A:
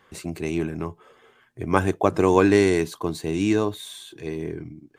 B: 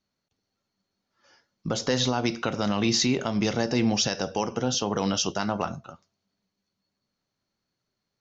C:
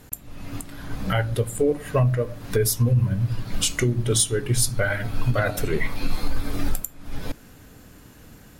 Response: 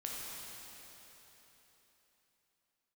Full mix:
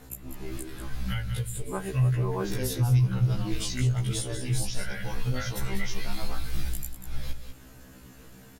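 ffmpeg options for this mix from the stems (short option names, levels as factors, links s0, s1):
-filter_complex "[0:a]lowpass=1600,volume=0.299[s0];[1:a]adelay=700,volume=0.282[s1];[2:a]aphaser=in_gain=1:out_gain=1:delay=4.9:decay=0.24:speed=0.3:type=triangular,acrossover=split=170|1700[s2][s3][s4];[s2]acompressor=threshold=0.112:ratio=4[s5];[s3]acompressor=threshold=0.00501:ratio=4[s6];[s4]acompressor=threshold=0.0251:ratio=4[s7];[s5][s6][s7]amix=inputs=3:normalize=0,volume=0.944,asplit=3[s8][s9][s10];[s9]volume=0.355[s11];[s10]apad=whole_len=219676[s12];[s0][s12]sidechaincompress=threshold=0.0282:ratio=8:attack=16:release=106[s13];[s11]aecho=0:1:193:1[s14];[s13][s1][s8][s14]amix=inputs=4:normalize=0,afftfilt=real='re*1.73*eq(mod(b,3),0)':imag='im*1.73*eq(mod(b,3),0)':win_size=2048:overlap=0.75"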